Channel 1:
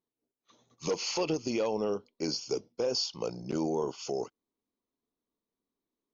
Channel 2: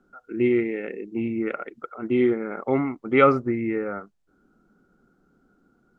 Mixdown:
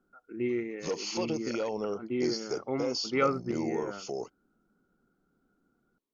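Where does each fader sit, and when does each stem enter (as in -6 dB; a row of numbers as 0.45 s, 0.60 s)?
-2.5 dB, -10.0 dB; 0.00 s, 0.00 s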